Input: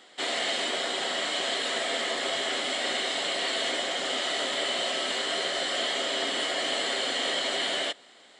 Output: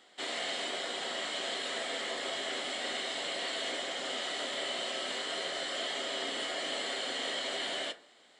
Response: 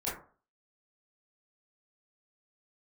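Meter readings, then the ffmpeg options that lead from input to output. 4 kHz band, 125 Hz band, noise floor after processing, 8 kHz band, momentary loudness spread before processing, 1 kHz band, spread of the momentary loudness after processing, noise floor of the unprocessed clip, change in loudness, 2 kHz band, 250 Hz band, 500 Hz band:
-7.0 dB, no reading, -61 dBFS, -7.0 dB, 1 LU, -7.0 dB, 1 LU, -54 dBFS, -7.0 dB, -7.0 dB, -6.5 dB, -6.5 dB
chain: -filter_complex "[0:a]asplit=2[s0][s1];[1:a]atrim=start_sample=2205,lowshelf=f=100:g=12[s2];[s1][s2]afir=irnorm=-1:irlink=0,volume=0.188[s3];[s0][s3]amix=inputs=2:normalize=0,volume=0.398"

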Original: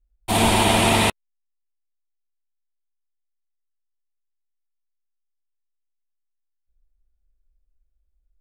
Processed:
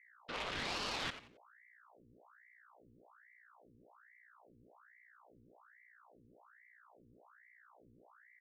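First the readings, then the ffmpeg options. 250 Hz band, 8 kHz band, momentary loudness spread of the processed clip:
-28.0 dB, -26.5 dB, 8 LU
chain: -filter_complex "[0:a]aecho=1:1:4.9:0.73,acrossover=split=2800[s0][s1];[s1]acompressor=threshold=0.0178:ratio=4:attack=1:release=60[s2];[s0][s2]amix=inputs=2:normalize=0,aresample=11025,aresample=44100,aeval=exprs='(tanh(10*val(0)+0.75)-tanh(0.75))/10':c=same,alimiter=limit=0.112:level=0:latency=1,acompressor=threshold=0.00126:ratio=1.5,highpass=f=1400:p=1,agate=range=0.0224:threshold=0.00631:ratio=3:detection=peak,aecho=1:1:89|178|267:0.251|0.0728|0.0211,aeval=exprs='val(0)+0.000355*(sin(2*PI*60*n/s)+sin(2*PI*2*60*n/s)/2+sin(2*PI*3*60*n/s)/3+sin(2*PI*4*60*n/s)/4+sin(2*PI*5*60*n/s)/5)':c=same,aeval=exprs='val(0)*sin(2*PI*1100*n/s+1100*0.85/1.2*sin(2*PI*1.2*n/s))':c=same,volume=2.51"

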